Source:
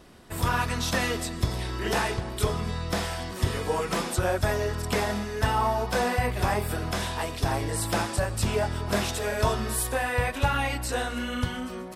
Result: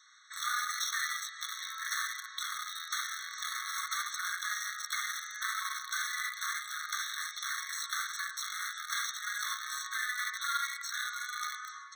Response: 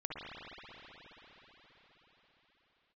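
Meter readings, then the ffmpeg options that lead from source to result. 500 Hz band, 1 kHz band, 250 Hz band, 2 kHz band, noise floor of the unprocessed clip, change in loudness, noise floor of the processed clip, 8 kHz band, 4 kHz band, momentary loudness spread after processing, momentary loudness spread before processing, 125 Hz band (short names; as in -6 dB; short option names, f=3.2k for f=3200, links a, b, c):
under -40 dB, -9.5 dB, under -40 dB, -3.0 dB, -36 dBFS, -7.5 dB, -48 dBFS, -2.0 dB, -2.5 dB, 5 LU, 4 LU, under -40 dB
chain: -filter_complex "[0:a]aresample=16000,asoftclip=type=hard:threshold=-21dB,aresample=44100,highpass=f=81:w=0.5412,highpass=f=81:w=1.3066,bass=f=250:g=2,treble=f=4k:g=10[a];[1:a]atrim=start_sample=2205,afade=t=out:st=0.33:d=0.01,atrim=end_sample=14994,atrim=end_sample=3087[b];[a][b]afir=irnorm=-1:irlink=0,acrossover=split=170|660|1500|4100[c][d][e][f][g];[c]acompressor=threshold=-38dB:ratio=4[h];[d]acompressor=threshold=-44dB:ratio=4[i];[e]acompressor=threshold=-38dB:ratio=4[j];[f]acompressor=threshold=-45dB:ratio=4[k];[g]acompressor=threshold=-42dB:ratio=4[l];[h][i][j][k][l]amix=inputs=5:normalize=0,asplit=2[m][n];[n]acrusher=bits=4:mix=0:aa=0.000001,volume=-3dB[o];[m][o]amix=inputs=2:normalize=0,afftfilt=real='re*eq(mod(floor(b*sr/1024/1100),2),1)':imag='im*eq(mod(floor(b*sr/1024/1100),2),1)':win_size=1024:overlap=0.75,volume=2dB"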